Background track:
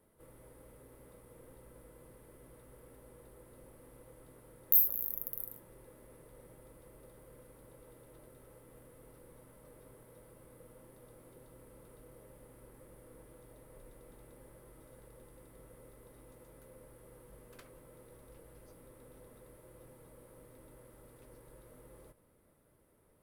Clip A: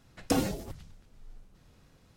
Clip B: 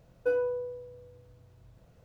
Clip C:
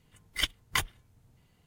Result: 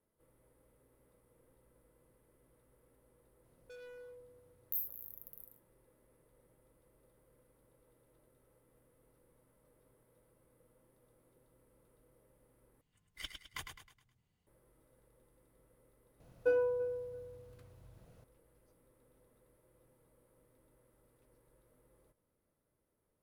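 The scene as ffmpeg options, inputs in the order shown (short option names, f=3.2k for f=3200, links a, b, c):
-filter_complex "[2:a]asplit=2[a][b];[0:a]volume=-13dB[c];[a]asoftclip=type=hard:threshold=-36.5dB[d];[3:a]aecho=1:1:105|210|315|420|525:0.473|0.194|0.0795|0.0326|0.0134[e];[b]asplit=2[f][g];[g]adelay=337,lowpass=f=1.4k:p=1,volume=-17dB,asplit=2[h][i];[i]adelay=337,lowpass=f=1.4k:p=1,volume=0.28,asplit=2[j][k];[k]adelay=337,lowpass=f=1.4k:p=1,volume=0.28[l];[f][h][j][l]amix=inputs=4:normalize=0[m];[c]asplit=2[n][o];[n]atrim=end=12.814[p];[e]atrim=end=1.66,asetpts=PTS-STARTPTS,volume=-16.5dB[q];[o]atrim=start=14.466[r];[d]atrim=end=2.04,asetpts=PTS-STARTPTS,volume=-14.5dB,afade=t=in:d=0.004:c=hsin,afade=t=out:st=2.036:d=0.004:c=hsin,adelay=3440[s];[m]atrim=end=2.04,asetpts=PTS-STARTPTS,volume=-2.5dB,afade=t=in:d=0.004:c=hsin,afade=t=out:st=2.036:d=0.004:c=hsin,adelay=714420S[t];[p][q]acrossfade=d=0.004:c1=hsin:c2=hsin[u];[u][r]acrossfade=d=0.004:c1=hsin:c2=hsin[v];[v][s][t]amix=inputs=3:normalize=0"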